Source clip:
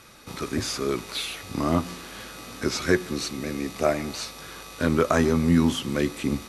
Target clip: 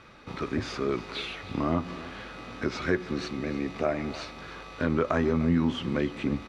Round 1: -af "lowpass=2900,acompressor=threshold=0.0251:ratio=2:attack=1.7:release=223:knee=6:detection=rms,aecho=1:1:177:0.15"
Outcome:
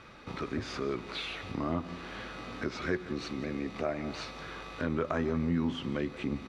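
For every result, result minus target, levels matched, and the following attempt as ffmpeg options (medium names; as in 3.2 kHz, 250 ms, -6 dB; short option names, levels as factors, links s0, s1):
echo 124 ms early; compression: peak gain reduction +5.5 dB
-af "lowpass=2900,acompressor=threshold=0.0251:ratio=2:attack=1.7:release=223:knee=6:detection=rms,aecho=1:1:301:0.15"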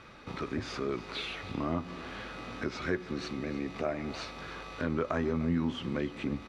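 compression: peak gain reduction +5.5 dB
-af "lowpass=2900,acompressor=threshold=0.0891:ratio=2:attack=1.7:release=223:knee=6:detection=rms,aecho=1:1:301:0.15"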